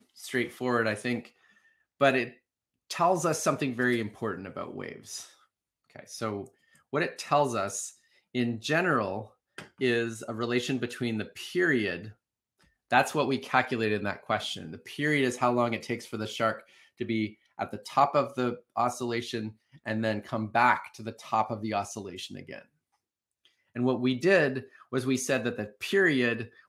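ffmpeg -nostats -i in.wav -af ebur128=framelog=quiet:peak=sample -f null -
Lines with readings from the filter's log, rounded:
Integrated loudness:
  I:         -29.0 LUFS
  Threshold: -39.8 LUFS
Loudness range:
  LRA:         4.3 LU
  Threshold: -50.2 LUFS
  LRA low:   -32.9 LUFS
  LRA high:  -28.6 LUFS
Sample peak:
  Peak:       -6.6 dBFS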